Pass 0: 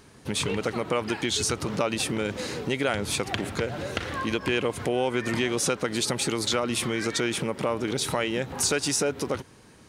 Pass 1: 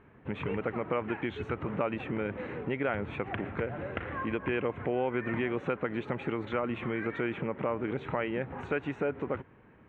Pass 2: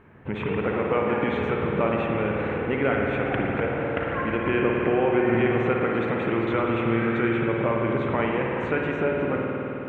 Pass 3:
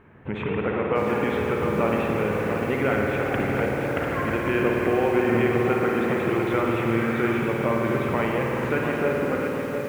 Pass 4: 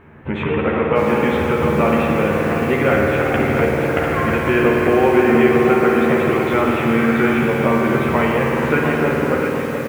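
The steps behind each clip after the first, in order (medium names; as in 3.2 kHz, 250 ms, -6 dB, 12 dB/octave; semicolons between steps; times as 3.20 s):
inverse Chebyshev low-pass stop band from 4.6 kHz, stop band 40 dB; trim -4.5 dB
spring tank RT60 3.8 s, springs 52 ms, chirp 70 ms, DRR -1.5 dB; trim +5 dB
bit-crushed delay 698 ms, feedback 55%, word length 7-bit, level -7 dB
doubling 13 ms -4 dB; trim +6 dB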